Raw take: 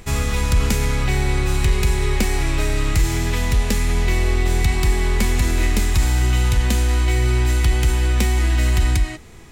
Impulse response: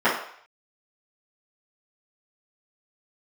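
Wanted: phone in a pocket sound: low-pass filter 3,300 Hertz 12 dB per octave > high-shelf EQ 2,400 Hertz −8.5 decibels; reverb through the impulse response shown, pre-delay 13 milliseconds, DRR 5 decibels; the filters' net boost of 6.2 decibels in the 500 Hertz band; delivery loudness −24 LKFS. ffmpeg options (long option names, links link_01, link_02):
-filter_complex "[0:a]equalizer=frequency=500:width_type=o:gain=9,asplit=2[link_01][link_02];[1:a]atrim=start_sample=2205,adelay=13[link_03];[link_02][link_03]afir=irnorm=-1:irlink=0,volume=-25dB[link_04];[link_01][link_04]amix=inputs=2:normalize=0,lowpass=3300,highshelf=frequency=2400:gain=-8.5,volume=-5dB"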